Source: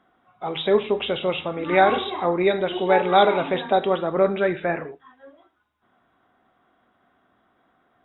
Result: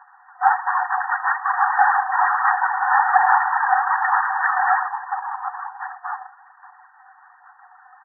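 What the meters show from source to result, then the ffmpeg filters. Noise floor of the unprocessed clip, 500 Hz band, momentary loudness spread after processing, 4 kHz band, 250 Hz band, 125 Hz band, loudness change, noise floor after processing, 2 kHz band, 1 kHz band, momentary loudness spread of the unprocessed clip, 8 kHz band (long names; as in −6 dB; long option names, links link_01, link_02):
−67 dBFS, below −15 dB, 14 LU, below −40 dB, below −40 dB, below −40 dB, +2.0 dB, −52 dBFS, +9.0 dB, +7.5 dB, 10 LU, can't be measured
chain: -filter_complex "[0:a]equalizer=frequency=1300:width_type=o:width=1.2:gain=-11.5,aecho=1:1:6.1:0.95,asplit=2[link_01][link_02];[link_02]adelay=1399,volume=-17dB,highshelf=frequency=4000:gain=-31.5[link_03];[link_01][link_03]amix=inputs=2:normalize=0,acontrast=28,aeval=exprs='max(val(0),0)':channel_layout=same,acrusher=bits=10:mix=0:aa=0.000001,asoftclip=type=tanh:threshold=-19.5dB,apsyclip=26.5dB,afftfilt=real='hypot(re,im)*cos(2*PI*random(0))':imag='hypot(re,im)*sin(2*PI*random(1))':win_size=512:overlap=0.75,aphaser=in_gain=1:out_gain=1:delay=4:decay=0.39:speed=1.2:type=sinusoidal,afftfilt=real='re*between(b*sr/4096,730,1900)':imag='im*between(b*sr/4096,730,1900)':win_size=4096:overlap=0.75"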